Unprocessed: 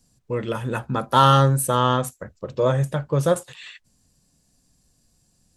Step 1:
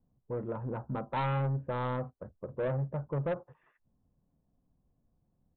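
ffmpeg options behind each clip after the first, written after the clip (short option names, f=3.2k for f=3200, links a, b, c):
-af "lowpass=f=1.1k:w=0.5412,lowpass=f=1.1k:w=1.3066,aresample=8000,asoftclip=type=tanh:threshold=-19dB,aresample=44100,volume=-8dB"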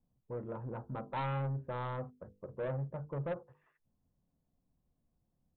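-af "bandreject=f=50:t=h:w=6,bandreject=f=100:t=h:w=6,bandreject=f=150:t=h:w=6,bandreject=f=200:t=h:w=6,bandreject=f=250:t=h:w=6,bandreject=f=300:t=h:w=6,bandreject=f=350:t=h:w=6,bandreject=f=400:t=h:w=6,bandreject=f=450:t=h:w=6,bandreject=f=500:t=h:w=6,volume=-4.5dB"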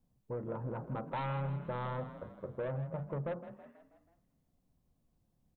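-filter_complex "[0:a]acompressor=threshold=-38dB:ratio=6,asplit=2[a][b];[b]asplit=5[c][d][e][f][g];[c]adelay=162,afreqshift=32,volume=-12.5dB[h];[d]adelay=324,afreqshift=64,volume=-18.3dB[i];[e]adelay=486,afreqshift=96,volume=-24.2dB[j];[f]adelay=648,afreqshift=128,volume=-30dB[k];[g]adelay=810,afreqshift=160,volume=-35.9dB[l];[h][i][j][k][l]amix=inputs=5:normalize=0[m];[a][m]amix=inputs=2:normalize=0,volume=3.5dB"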